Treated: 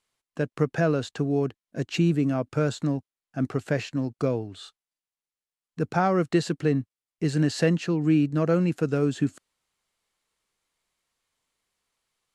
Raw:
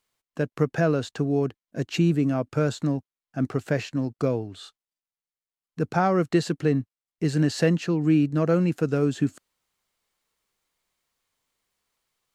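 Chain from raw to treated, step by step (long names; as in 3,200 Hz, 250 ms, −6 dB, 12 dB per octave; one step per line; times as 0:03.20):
Chebyshev low-pass filter 12,000 Hz, order 8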